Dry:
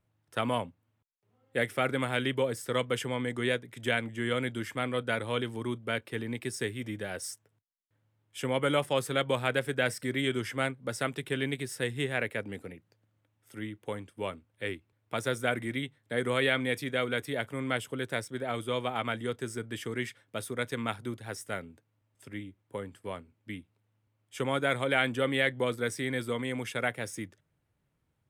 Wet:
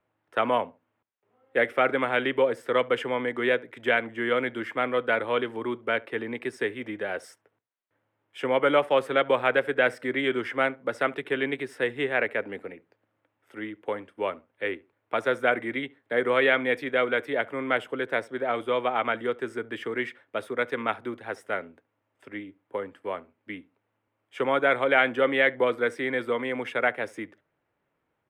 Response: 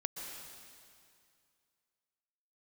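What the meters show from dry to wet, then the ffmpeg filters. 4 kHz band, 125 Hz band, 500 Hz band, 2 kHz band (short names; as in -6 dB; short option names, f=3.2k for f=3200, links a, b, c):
0.0 dB, -8.0 dB, +6.5 dB, +6.0 dB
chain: -filter_complex "[0:a]acrossover=split=280 2800:gain=0.126 1 0.0891[a][b][c];[a][b][c]amix=inputs=3:normalize=0,asplit=2[d][e];[e]adelay=71,lowpass=f=1.1k:p=1,volume=-20.5dB,asplit=2[f][g];[g]adelay=71,lowpass=f=1.1k:p=1,volume=0.25[h];[d][f][h]amix=inputs=3:normalize=0,volume=7.5dB"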